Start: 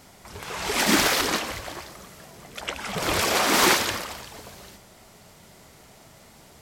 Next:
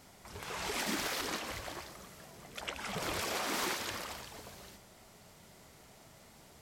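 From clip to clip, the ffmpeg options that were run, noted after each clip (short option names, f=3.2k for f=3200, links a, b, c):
-af "acompressor=threshold=-28dB:ratio=3,volume=-7dB"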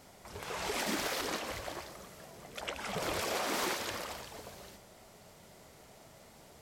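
-af "equalizer=f=550:t=o:w=1.1:g=4.5"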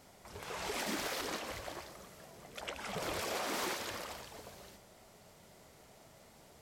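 -af "volume=26.5dB,asoftclip=hard,volume=-26.5dB,volume=-3dB"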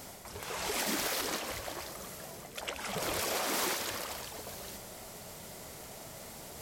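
-af "areverse,acompressor=mode=upward:threshold=-42dB:ratio=2.5,areverse,crystalizer=i=1:c=0,volume=3dB"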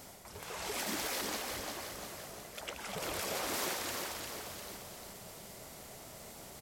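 -af "aecho=1:1:350|700|1050|1400|1750|2100:0.531|0.255|0.122|0.0587|0.0282|0.0135,volume=-4.5dB"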